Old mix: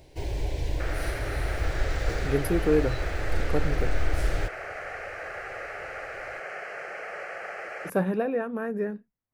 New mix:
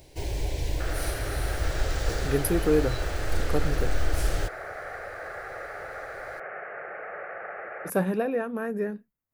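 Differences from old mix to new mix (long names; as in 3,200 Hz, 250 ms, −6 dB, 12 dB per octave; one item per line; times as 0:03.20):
second sound: add low-pass filter 1,800 Hz 24 dB per octave
master: add high-shelf EQ 5,200 Hz +10 dB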